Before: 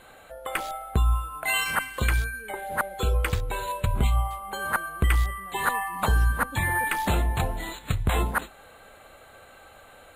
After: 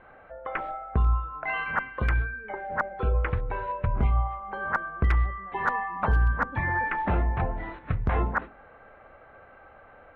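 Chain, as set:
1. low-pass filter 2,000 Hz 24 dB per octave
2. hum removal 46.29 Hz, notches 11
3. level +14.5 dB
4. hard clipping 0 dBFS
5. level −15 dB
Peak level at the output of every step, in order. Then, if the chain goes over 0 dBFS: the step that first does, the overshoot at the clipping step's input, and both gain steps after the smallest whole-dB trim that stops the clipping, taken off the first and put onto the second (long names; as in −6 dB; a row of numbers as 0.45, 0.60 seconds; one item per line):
−10.5, −11.0, +3.5, 0.0, −15.0 dBFS
step 3, 3.5 dB
step 3 +10.5 dB, step 5 −11 dB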